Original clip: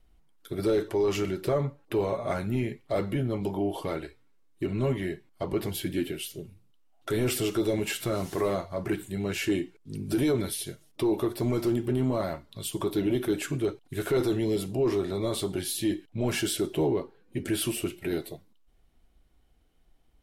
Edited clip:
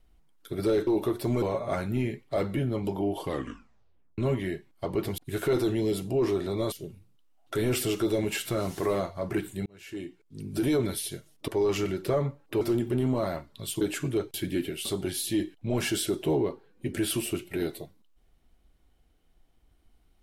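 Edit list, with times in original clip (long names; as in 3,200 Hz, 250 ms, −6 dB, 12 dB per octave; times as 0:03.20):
0:00.87–0:02.00: swap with 0:11.03–0:11.58
0:03.83: tape stop 0.93 s
0:05.76–0:06.27: swap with 0:13.82–0:15.36
0:09.21–0:10.29: fade in
0:12.78–0:13.29: remove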